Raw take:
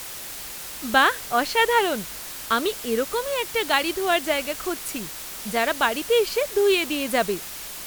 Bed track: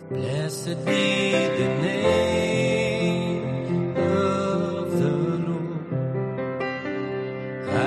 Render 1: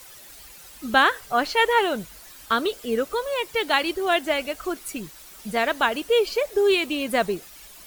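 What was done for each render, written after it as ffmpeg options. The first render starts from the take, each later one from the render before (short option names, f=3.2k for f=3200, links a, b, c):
-af "afftdn=nr=12:nf=-36"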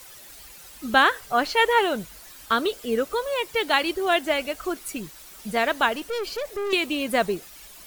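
-filter_complex "[0:a]asettb=1/sr,asplit=3[a][b][c];[a]atrim=end=5.934[d];[b]atrim=start=5.93:end=6.73,asetpts=PTS-STARTPTS,afade=t=in:d=0.004:c=qsin,afade=t=out:st=0.796:d=0.004:c=qsin,aeval=exprs='(tanh(20*val(0)+0.25)-tanh(0.25))/20':c=same[e];[c]atrim=start=6.726[f];[d][e]acrossfade=d=0.004:c1=hsin:c2=qsin[g];[g][f]acrossfade=d=0.004:c1=qsin:c2=hsin"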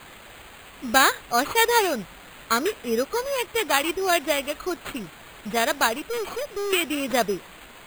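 -af "acrusher=samples=8:mix=1:aa=0.000001"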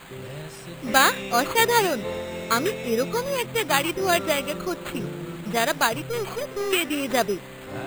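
-filter_complex "[1:a]volume=-11dB[a];[0:a][a]amix=inputs=2:normalize=0"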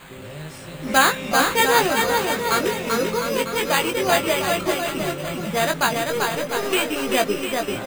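-filter_complex "[0:a]asplit=2[a][b];[b]adelay=19,volume=-5.5dB[c];[a][c]amix=inputs=2:normalize=0,aecho=1:1:390|702|951.6|1151|1311:0.631|0.398|0.251|0.158|0.1"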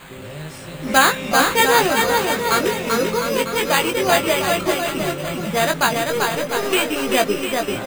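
-af "volume=2.5dB,alimiter=limit=-2dB:level=0:latency=1"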